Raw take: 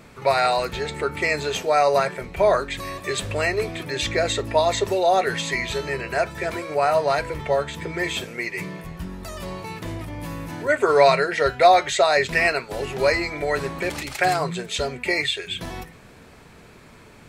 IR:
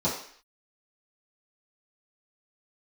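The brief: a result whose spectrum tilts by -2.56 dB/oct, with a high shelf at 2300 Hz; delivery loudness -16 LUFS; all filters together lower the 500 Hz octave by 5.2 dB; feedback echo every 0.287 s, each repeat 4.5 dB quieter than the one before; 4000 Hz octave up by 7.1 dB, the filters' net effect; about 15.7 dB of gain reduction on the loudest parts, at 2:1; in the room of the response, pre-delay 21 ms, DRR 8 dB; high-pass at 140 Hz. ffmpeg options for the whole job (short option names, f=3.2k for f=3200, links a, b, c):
-filter_complex "[0:a]highpass=140,equalizer=f=500:t=o:g=-7.5,highshelf=f=2.3k:g=5,equalizer=f=4k:t=o:g=4,acompressor=threshold=-42dB:ratio=2,aecho=1:1:287|574|861|1148|1435|1722|2009|2296|2583:0.596|0.357|0.214|0.129|0.0772|0.0463|0.0278|0.0167|0.01,asplit=2[a][b];[1:a]atrim=start_sample=2205,adelay=21[c];[b][c]afir=irnorm=-1:irlink=0,volume=-19dB[d];[a][d]amix=inputs=2:normalize=0,volume=16dB"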